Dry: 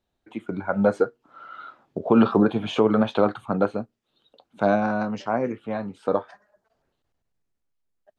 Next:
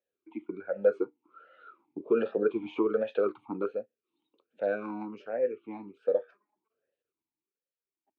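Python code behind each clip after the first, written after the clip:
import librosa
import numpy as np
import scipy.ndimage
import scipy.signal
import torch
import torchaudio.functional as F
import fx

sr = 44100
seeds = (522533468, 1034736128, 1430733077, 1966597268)

y = fx.vowel_sweep(x, sr, vowels='e-u', hz=1.3)
y = y * librosa.db_to_amplitude(1.5)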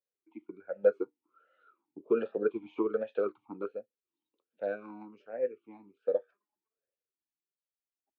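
y = fx.upward_expand(x, sr, threshold_db=-42.0, expansion=1.5)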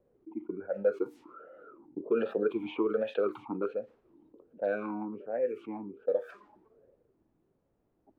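y = fx.env_lowpass(x, sr, base_hz=410.0, full_db=-30.0)
y = fx.env_flatten(y, sr, amount_pct=50)
y = y * librosa.db_to_amplitude(-3.5)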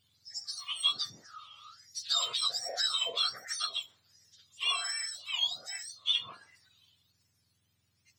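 y = fx.octave_mirror(x, sr, pivot_hz=1300.0)
y = y * librosa.db_to_amplitude(5.0)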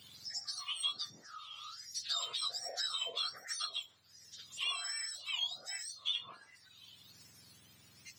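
y = fx.band_squash(x, sr, depth_pct=70)
y = y * librosa.db_to_amplitude(-5.5)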